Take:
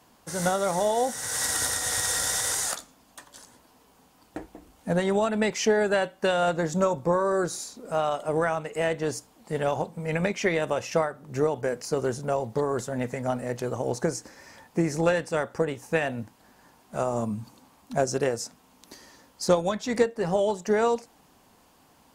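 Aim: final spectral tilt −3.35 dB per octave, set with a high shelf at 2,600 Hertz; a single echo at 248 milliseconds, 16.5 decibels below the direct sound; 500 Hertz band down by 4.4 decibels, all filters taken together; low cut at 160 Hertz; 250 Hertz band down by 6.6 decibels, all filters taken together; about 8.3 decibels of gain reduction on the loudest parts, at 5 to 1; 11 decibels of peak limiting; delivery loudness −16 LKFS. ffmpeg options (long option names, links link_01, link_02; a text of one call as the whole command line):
ffmpeg -i in.wav -af "highpass=160,equalizer=frequency=250:width_type=o:gain=-7,equalizer=frequency=500:width_type=o:gain=-4,highshelf=frequency=2600:gain=8.5,acompressor=threshold=-26dB:ratio=5,alimiter=limit=-22.5dB:level=0:latency=1,aecho=1:1:248:0.15,volume=17.5dB" out.wav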